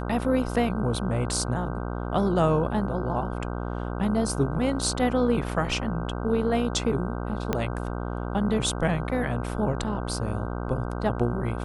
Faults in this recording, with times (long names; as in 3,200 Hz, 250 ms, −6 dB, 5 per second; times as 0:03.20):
mains buzz 60 Hz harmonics 26 −31 dBFS
0:07.53: click −11 dBFS